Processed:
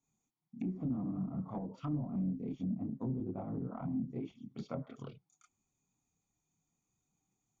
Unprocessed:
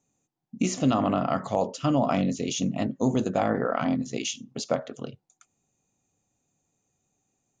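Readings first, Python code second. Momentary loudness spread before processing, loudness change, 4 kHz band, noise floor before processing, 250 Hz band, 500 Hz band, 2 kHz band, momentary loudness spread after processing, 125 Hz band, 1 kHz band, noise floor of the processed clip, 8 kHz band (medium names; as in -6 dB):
8 LU, -12.5 dB, under -25 dB, -79 dBFS, -10.5 dB, -19.5 dB, under -25 dB, 10 LU, -7.5 dB, -21.5 dB, under -85 dBFS, under -35 dB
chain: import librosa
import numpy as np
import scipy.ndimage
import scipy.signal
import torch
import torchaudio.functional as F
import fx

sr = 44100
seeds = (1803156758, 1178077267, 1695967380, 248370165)

y = x + 0.58 * np.pad(x, (int(0.9 * sr / 1000.0), 0))[:len(x)]
y = fx.chorus_voices(y, sr, voices=4, hz=0.87, base_ms=29, depth_ms=3.8, mix_pct=60)
y = fx.cheby_harmonics(y, sr, harmonics=(3, 5, 7), levels_db=(-6, -13, -31), full_scale_db=-11.5)
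y = fx.env_lowpass_down(y, sr, base_hz=320.0, full_db=-33.5)
y = y * 10.0 ** (1.0 / 20.0)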